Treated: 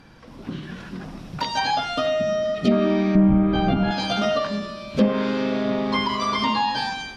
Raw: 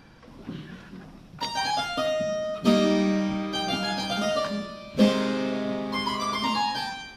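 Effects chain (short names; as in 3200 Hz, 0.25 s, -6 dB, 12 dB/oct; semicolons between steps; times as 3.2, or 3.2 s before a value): recorder AGC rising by 6.8 dB/s; 2.46–2.69 spectral repair 850–1900 Hz before; 3.15–3.91 RIAA curve playback; treble ducked by the level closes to 1700 Hz, closed at -15.5 dBFS; ending taper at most 110 dB/s; gain +2 dB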